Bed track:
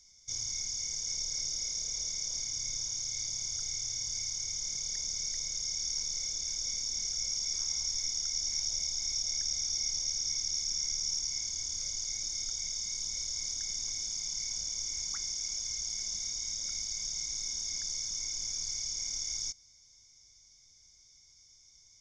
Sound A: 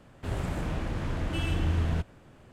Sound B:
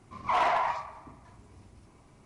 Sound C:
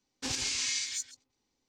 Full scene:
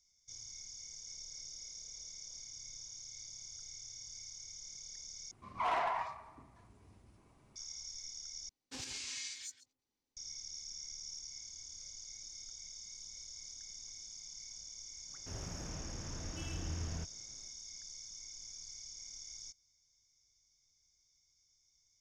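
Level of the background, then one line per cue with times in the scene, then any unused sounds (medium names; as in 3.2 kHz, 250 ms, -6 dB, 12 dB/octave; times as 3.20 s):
bed track -13.5 dB
5.31 s: replace with B -8 dB
8.49 s: replace with C -11 dB
15.03 s: add A -13.5 dB, fades 0.10 s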